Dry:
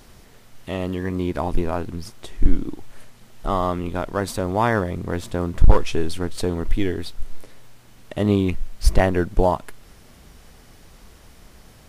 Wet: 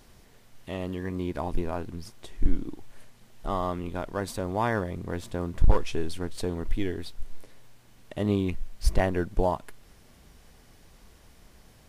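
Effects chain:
notch filter 1,300 Hz, Q 20
level −7 dB

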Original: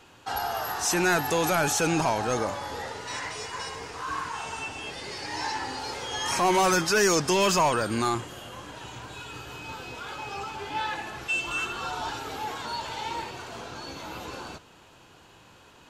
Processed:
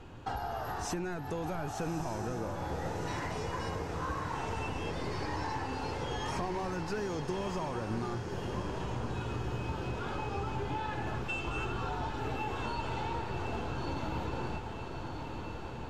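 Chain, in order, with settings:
spectral tilt −3.5 dB per octave
downward compressor 12 to 1, threshold −33 dBFS, peak gain reduction 19 dB
on a send: feedback delay with all-pass diffusion 1,242 ms, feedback 63%, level −6 dB

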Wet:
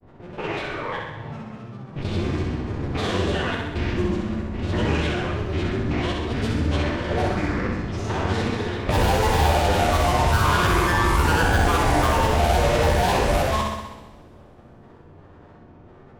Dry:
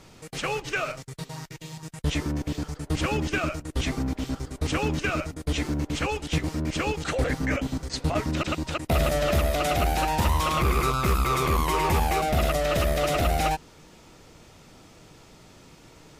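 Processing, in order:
spectrum averaged block by block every 200 ms
low-pass that shuts in the quiet parts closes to 940 Hz, open at −20.5 dBFS
granular cloud, spray 12 ms, pitch spread up and down by 7 semitones
on a send: flutter between parallel walls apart 11.1 metres, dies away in 0.87 s
on the sum: coupled-rooms reverb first 0.95 s, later 3.2 s, from −22 dB, DRR 5 dB
level +4.5 dB

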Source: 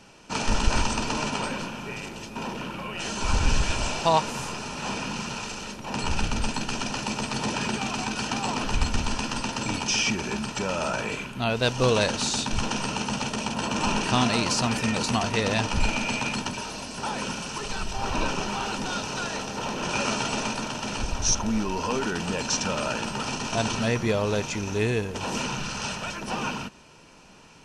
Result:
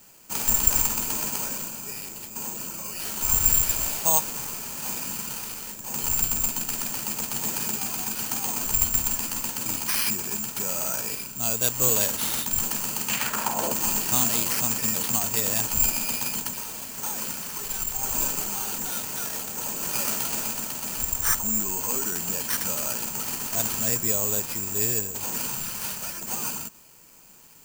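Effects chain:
bad sample-rate conversion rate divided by 6×, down none, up zero stuff
0:13.08–0:13.72: parametric band 2,800 Hz → 480 Hz +15 dB 1.5 octaves
level −8 dB

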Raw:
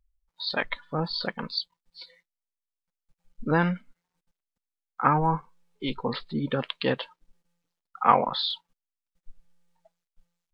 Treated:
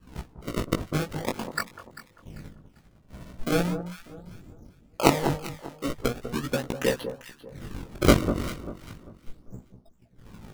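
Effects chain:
wind on the microphone 200 Hz −45 dBFS
low-pass that shuts in the quiet parts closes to 1,000 Hz, open at −22 dBFS
transient designer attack +9 dB, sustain −3 dB
sample-and-hold swept by an LFO 30×, swing 160% 0.39 Hz
chorus effect 0.31 Hz, delay 16 ms, depth 6.1 ms
on a send: delay that swaps between a low-pass and a high-pass 197 ms, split 1,200 Hz, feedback 52%, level −9 dB
on the sum: level −1.5 dB

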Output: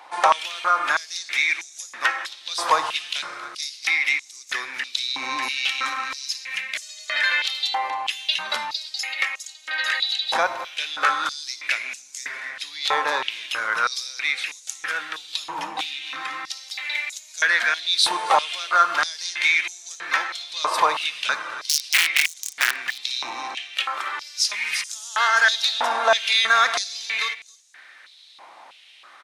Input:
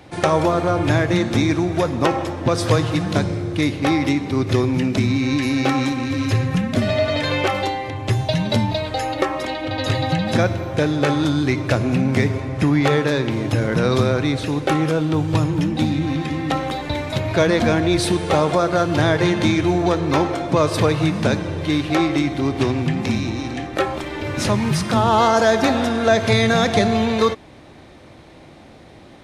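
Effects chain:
0:21.53–0:22.76: wrap-around overflow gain 11 dB
single-tap delay 271 ms −16 dB
high-pass on a step sequencer 3.1 Hz 950–6,700 Hz
level −1.5 dB

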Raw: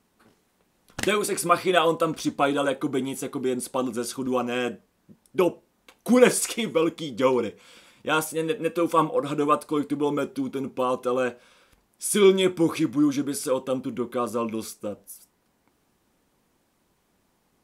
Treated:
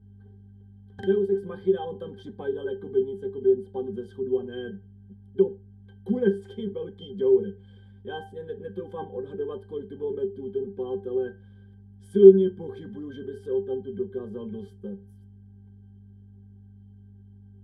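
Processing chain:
graphic EQ with 15 bands 160 Hz +7 dB, 400 Hz +9 dB, 1,000 Hz −4 dB, 2,500 Hz −8 dB, 6,300 Hz −8 dB
mains hum 50 Hz, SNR 23 dB
resonances in every octave G, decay 0.15 s
one half of a high-frequency compander encoder only
level +1 dB

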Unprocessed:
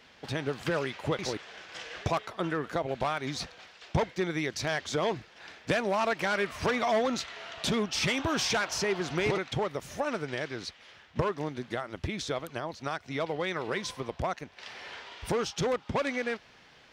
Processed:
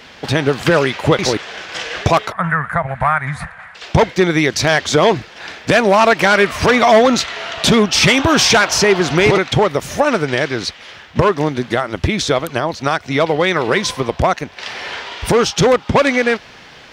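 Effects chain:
0:02.32–0:03.75: drawn EQ curve 170 Hz 0 dB, 340 Hz −28 dB, 650 Hz −6 dB, 1,100 Hz +1 dB, 1,900 Hz +3 dB, 2,900 Hz −17 dB, 5,800 Hz −26 dB, 9,700 Hz −2 dB, 14,000 Hz −22 dB
boost into a limiter +18 dB
level −1 dB

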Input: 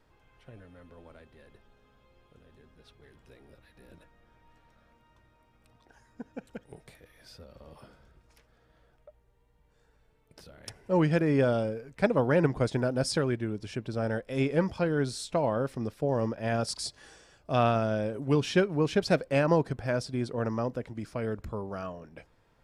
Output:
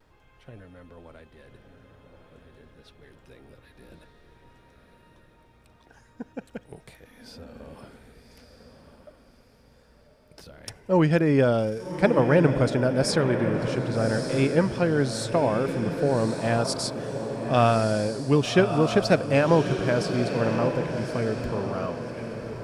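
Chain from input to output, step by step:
pitch vibrato 0.49 Hz 18 cents
feedback delay with all-pass diffusion 1,178 ms, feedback 40%, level −7 dB
level +4.5 dB

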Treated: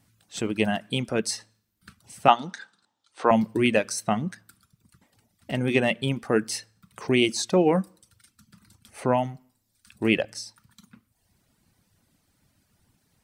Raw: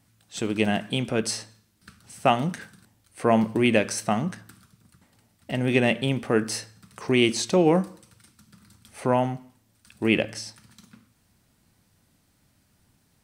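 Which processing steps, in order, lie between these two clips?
reverb reduction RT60 0.9 s
0:02.28–0:03.31: loudspeaker in its box 310–7,100 Hz, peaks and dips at 880 Hz +9 dB, 1,300 Hz +7 dB, 2,200 Hz −5 dB, 3,600 Hz +8 dB

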